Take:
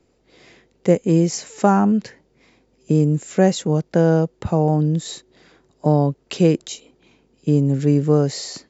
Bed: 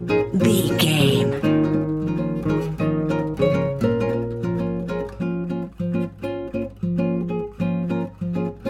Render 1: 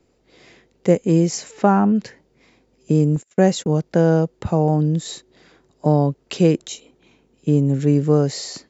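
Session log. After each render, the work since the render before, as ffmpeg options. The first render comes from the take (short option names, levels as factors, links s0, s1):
-filter_complex "[0:a]asettb=1/sr,asplit=3[s0][s1][s2];[s0]atrim=end=1.514[s3];[s1]atrim=start=1.51:end=1.96,asetpts=PTS-STARTPTS,afade=t=in:d=0.004:c=qsin,afade=t=out:st=0.446:d=0.004:c=qsin,lowpass=3800[s4];[s2]atrim=start=1.956[s5];[s3][s4]acrossfade=d=0.004:c1=hsin:c2=qsin[s6];[s6][s5]acrossfade=d=0.004:c1=qsin:c2=hsin,asettb=1/sr,asplit=3[s7][s8][s9];[s7]atrim=end=3.164[s10];[s8]atrim=start=3.16:end=3.82,asetpts=PTS-STARTPTS,afade=t=in:d=0.004:c=qsin,afade=t=out:st=0.656:d=0.004:c=qsin,agate=range=0.0178:threshold=0.0178:ratio=16:release=100:detection=peak[s11];[s9]atrim=start=3.816[s12];[s10][s11]acrossfade=d=0.004:c1=hsin:c2=qsin[s13];[s13][s12]acrossfade=d=0.004:c1=qsin:c2=hsin,asettb=1/sr,asplit=3[s14][s15][s16];[s14]atrim=end=6.514[s17];[s15]atrim=start=6.51:end=7.94,asetpts=PTS-STARTPTS,afade=t=in:d=0.004:c=qsin,afade=t=out:st=1.426:d=0.004:c=qsin,bandreject=f=4800:w=11[s18];[s16]atrim=start=7.936[s19];[s17][s18]acrossfade=d=0.004:c1=hsin:c2=qsin[s20];[s20][s19]acrossfade=d=0.004:c1=qsin:c2=hsin"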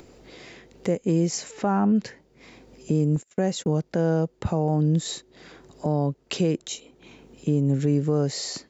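-af "alimiter=limit=0.224:level=0:latency=1:release=312,acompressor=mode=upward:threshold=0.0126:ratio=2.5"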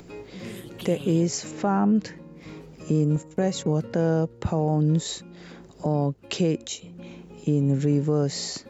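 -filter_complex "[1:a]volume=0.0891[s0];[0:a][s0]amix=inputs=2:normalize=0"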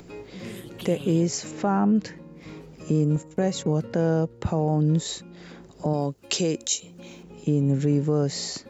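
-filter_complex "[0:a]asettb=1/sr,asplit=3[s0][s1][s2];[s0]atrim=end=5.934[s3];[s1]atrim=start=5.93:end=7.23,asetpts=PTS-STARTPTS,afade=t=in:d=0.004:c=qsin,afade=t=out:st=1.296:d=0.004:c=qsin,bass=f=250:g=-5,treble=f=4000:g=11[s4];[s2]atrim=start=7.226[s5];[s3][s4]acrossfade=d=0.004:c1=hsin:c2=qsin[s6];[s6][s5]acrossfade=d=0.004:c1=qsin:c2=hsin"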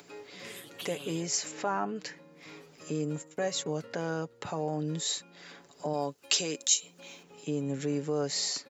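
-af "highpass=f=1100:p=1,aecho=1:1:7:0.45"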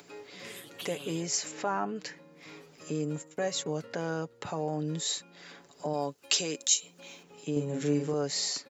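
-filter_complex "[0:a]asettb=1/sr,asplit=3[s0][s1][s2];[s0]atrim=end=7.524[s3];[s1]atrim=start=7.52:end=8.14,asetpts=PTS-STARTPTS,afade=t=in:d=0.004:c=qsin,afade=t=out:st=0.616:d=0.004:c=qsin,asplit=2[s4][s5];[s5]adelay=41,volume=0.708[s6];[s4][s6]amix=inputs=2:normalize=0,atrim=end_sample=27342[s7];[s2]atrim=start=8.136[s8];[s3][s7]acrossfade=d=0.004:c1=hsin:c2=qsin[s9];[s9][s8]acrossfade=d=0.004:c1=qsin:c2=hsin"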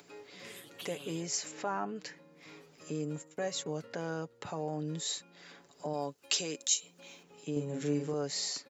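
-af "volume=0.631"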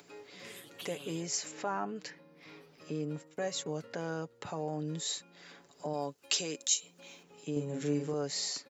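-filter_complex "[0:a]asettb=1/sr,asplit=3[s0][s1][s2];[s0]atrim=end=2.104[s3];[s1]atrim=start=2.1:end=3.33,asetpts=PTS-STARTPTS,afade=t=in:d=0.004:c=qsin,afade=t=out:st=1.226:d=0.004:c=qsin,equalizer=f=7000:w=4.8:g=-14.5[s4];[s2]atrim=start=3.326[s5];[s3][s4]acrossfade=d=0.004:c1=hsin:c2=qsin[s6];[s6][s5]acrossfade=d=0.004:c1=qsin:c2=hsin"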